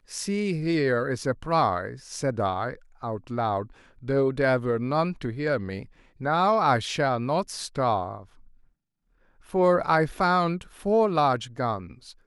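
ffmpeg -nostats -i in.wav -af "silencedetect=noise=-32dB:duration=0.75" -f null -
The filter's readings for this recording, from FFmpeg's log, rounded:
silence_start: 8.18
silence_end: 9.54 | silence_duration: 1.36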